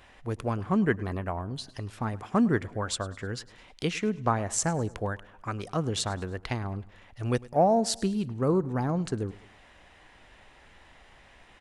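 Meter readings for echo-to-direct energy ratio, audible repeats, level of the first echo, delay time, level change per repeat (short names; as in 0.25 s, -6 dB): -20.0 dB, 3, -21.0 dB, 0.104 s, -6.5 dB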